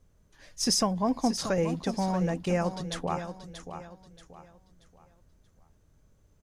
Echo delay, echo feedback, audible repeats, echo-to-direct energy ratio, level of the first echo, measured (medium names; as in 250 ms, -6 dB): 631 ms, 34%, 3, -9.5 dB, -10.0 dB